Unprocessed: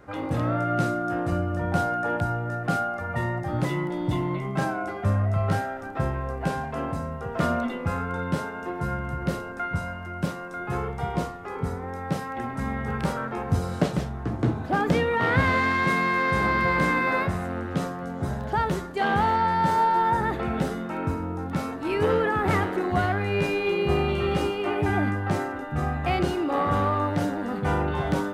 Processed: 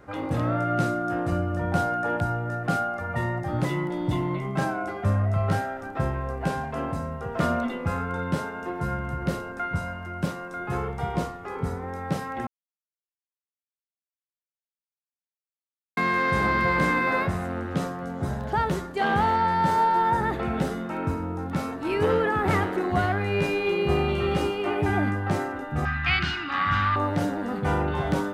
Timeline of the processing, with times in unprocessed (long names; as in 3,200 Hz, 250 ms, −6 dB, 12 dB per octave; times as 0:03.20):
0:12.47–0:15.97: silence
0:25.85–0:26.96: drawn EQ curve 110 Hz 0 dB, 260 Hz −7 dB, 500 Hz −23 dB, 1,500 Hz +10 dB, 3,000 Hz +9 dB, 5,000 Hz +6 dB, 10,000 Hz −16 dB